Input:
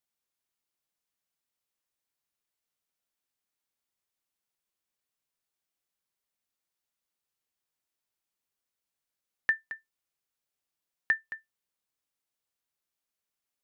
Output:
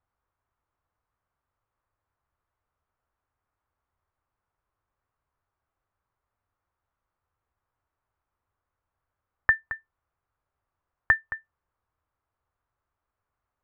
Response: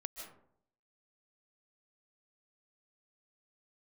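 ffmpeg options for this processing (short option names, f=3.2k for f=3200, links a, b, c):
-af "lowpass=f=1.2k:t=q:w=1.9,lowshelf=f=130:t=q:w=1.5:g=11.5,volume=9dB"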